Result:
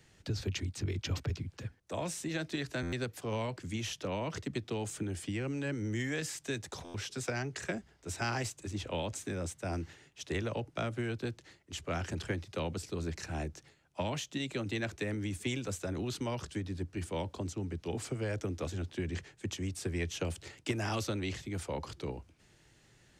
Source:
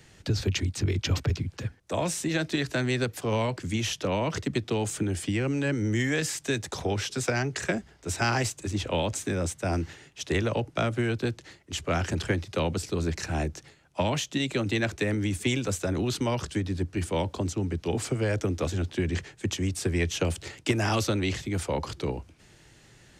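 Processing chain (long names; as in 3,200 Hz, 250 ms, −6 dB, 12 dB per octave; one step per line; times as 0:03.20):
buffer that repeats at 0:02.82/0:06.84, samples 512, times 8
level −8.5 dB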